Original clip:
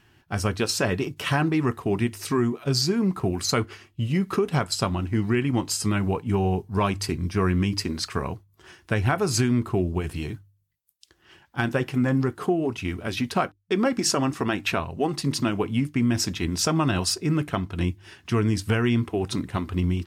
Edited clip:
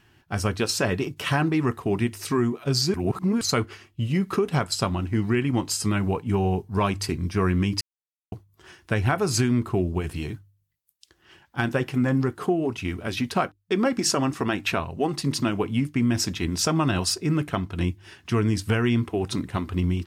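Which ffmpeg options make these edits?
-filter_complex "[0:a]asplit=5[s0][s1][s2][s3][s4];[s0]atrim=end=2.942[s5];[s1]atrim=start=2.938:end=3.412,asetpts=PTS-STARTPTS,areverse[s6];[s2]atrim=start=3.408:end=7.81,asetpts=PTS-STARTPTS,afade=t=out:st=4.398:d=0.004:c=hsin[s7];[s3]atrim=start=7.81:end=8.32,asetpts=PTS-STARTPTS,volume=0[s8];[s4]atrim=start=8.32,asetpts=PTS-STARTPTS,afade=t=in:d=0.004:c=hsin[s9];[s5][s6]acrossfade=d=0.004:c1=hsin:c2=hsin[s10];[s7][s8][s9]concat=n=3:v=0:a=1[s11];[s10][s11]acrossfade=d=0.004:c1=hsin:c2=hsin"

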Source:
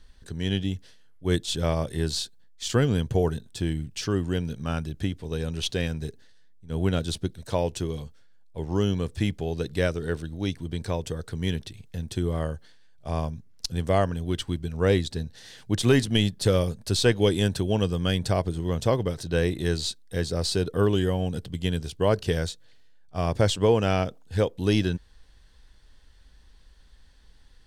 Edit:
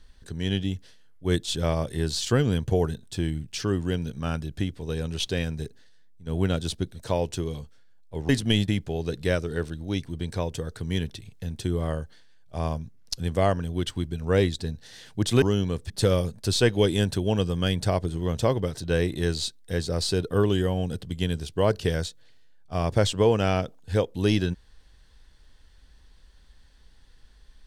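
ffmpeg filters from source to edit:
-filter_complex "[0:a]asplit=6[s0][s1][s2][s3][s4][s5];[s0]atrim=end=2.212[s6];[s1]atrim=start=2.638:end=8.722[s7];[s2]atrim=start=15.938:end=16.332[s8];[s3]atrim=start=9.198:end=15.942[s9];[s4]atrim=start=8.718:end=9.202[s10];[s5]atrim=start=16.328[s11];[s6][s7]acrossfade=d=0.004:c1=hsin:c2=hsin[s12];[s12][s8]acrossfade=d=0.004:c1=hsin:c2=hsin[s13];[s13][s9]acrossfade=d=0.004:c1=hsin:c2=hsin[s14];[s14][s10]acrossfade=d=0.004:c1=hsin:c2=hsin[s15];[s15][s11]acrossfade=d=0.004:c1=hsin:c2=hsin"

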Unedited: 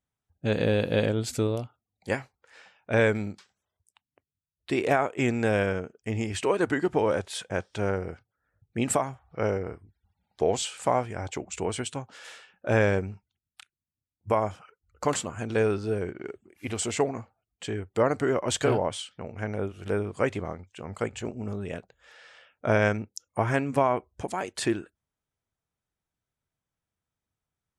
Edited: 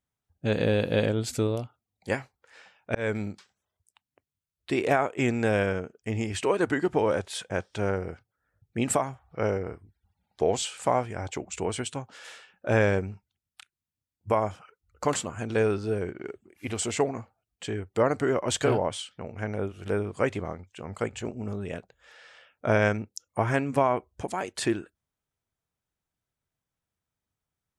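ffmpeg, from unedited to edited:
-filter_complex "[0:a]asplit=2[s0][s1];[s0]atrim=end=2.95,asetpts=PTS-STARTPTS,afade=t=out:st=2.946:d=0.004:c=hsin[s2];[s1]atrim=start=2.95,asetpts=PTS-STARTPTS,afade=t=in:d=0.33:c=qsin[s3];[s2][s3]concat=n=2:v=0:a=1"

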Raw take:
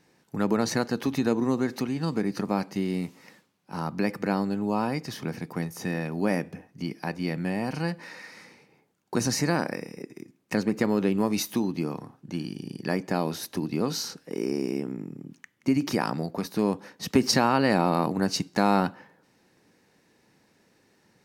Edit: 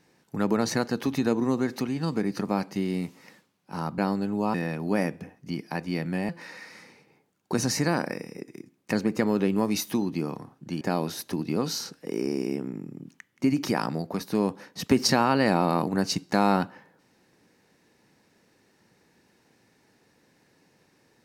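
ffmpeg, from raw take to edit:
-filter_complex "[0:a]asplit=5[s0][s1][s2][s3][s4];[s0]atrim=end=3.982[s5];[s1]atrim=start=4.268:end=4.832[s6];[s2]atrim=start=5.858:end=7.612[s7];[s3]atrim=start=7.908:end=12.432[s8];[s4]atrim=start=13.048[s9];[s5][s6]acrossfade=d=0.004:c1=hsin:c2=hsin[s10];[s10][s7]acrossfade=d=0.004:c1=hsin:c2=hsin[s11];[s11][s8]acrossfade=d=0.004:c1=hsin:c2=hsin[s12];[s12][s9]acrossfade=d=0.004:c1=hsin:c2=hsin"

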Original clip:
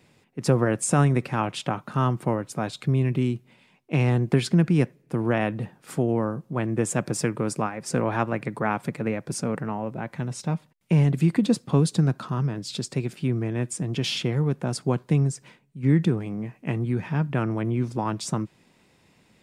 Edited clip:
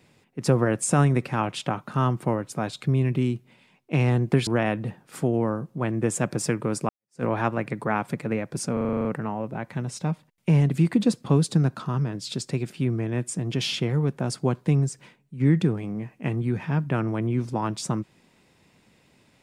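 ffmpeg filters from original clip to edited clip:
-filter_complex "[0:a]asplit=11[s0][s1][s2][s3][s4][s5][s6][s7][s8][s9][s10];[s0]atrim=end=4.472[s11];[s1]atrim=start=5.218:end=7.64,asetpts=PTS-STARTPTS,afade=t=out:st=2.418:d=0.004:c=hsin[s12];[s2]atrim=start=7.64:end=9.522,asetpts=PTS-STARTPTS,afade=t=in:d=0.35:c=exp[s13];[s3]atrim=start=9.478:end=9.522[s14];[s4]atrim=start=9.478:end=9.522[s15];[s5]atrim=start=9.478:end=9.522[s16];[s6]atrim=start=9.478:end=9.522[s17];[s7]atrim=start=9.478:end=9.522[s18];[s8]atrim=start=9.478:end=9.522[s19];[s9]atrim=start=9.478:end=9.522[s20];[s10]atrim=start=9.478[s21];[s12][s13]concat=n=2:v=0:a=1[s22];[s11][s22]acrossfade=d=0.004:c1=hsin:c2=hsin[s23];[s23][s14]acrossfade=d=0.004:c1=hsin:c2=hsin[s24];[s24][s15]acrossfade=d=0.004:c1=hsin:c2=hsin[s25];[s25][s16]acrossfade=d=0.004:c1=hsin:c2=hsin[s26];[s26][s17]acrossfade=d=0.004:c1=hsin:c2=hsin[s27];[s27][s18]acrossfade=d=0.004:c1=hsin:c2=hsin[s28];[s28][s19]acrossfade=d=0.004:c1=hsin:c2=hsin[s29];[s29][s20]acrossfade=d=0.004:c1=hsin:c2=hsin[s30];[s30][s21]acrossfade=d=0.004:c1=hsin:c2=hsin"

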